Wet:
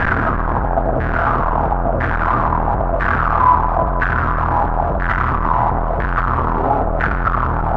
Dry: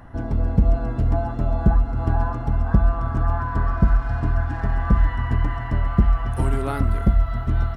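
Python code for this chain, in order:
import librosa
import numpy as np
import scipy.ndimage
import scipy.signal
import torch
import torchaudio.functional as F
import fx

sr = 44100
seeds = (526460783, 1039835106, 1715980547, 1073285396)

p1 = np.sign(x) * np.sqrt(np.mean(np.square(x)))
p2 = fx.filter_lfo_lowpass(p1, sr, shape='saw_down', hz=1.0, low_hz=610.0, high_hz=1700.0, q=5.1)
y = p2 + fx.echo_banded(p2, sr, ms=164, feedback_pct=83, hz=1200.0, wet_db=-11.5, dry=0)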